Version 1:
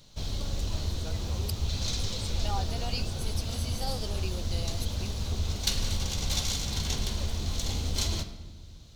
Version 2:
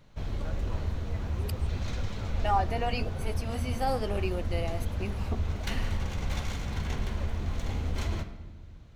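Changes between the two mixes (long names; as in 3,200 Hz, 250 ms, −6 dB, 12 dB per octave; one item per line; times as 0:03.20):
first voice: entry −0.60 s
second voice +8.5 dB
master: add high shelf with overshoot 2,900 Hz −13 dB, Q 1.5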